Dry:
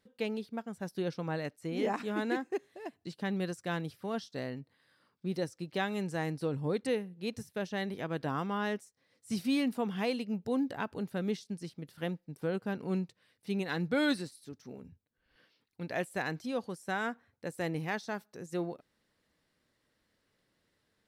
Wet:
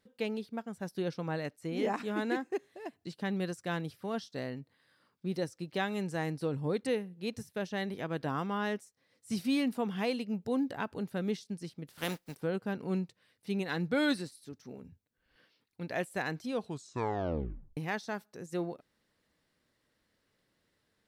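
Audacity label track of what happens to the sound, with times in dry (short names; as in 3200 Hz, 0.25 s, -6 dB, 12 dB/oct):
11.870000	12.360000	spectral contrast lowered exponent 0.54
16.520000	16.520000	tape stop 1.25 s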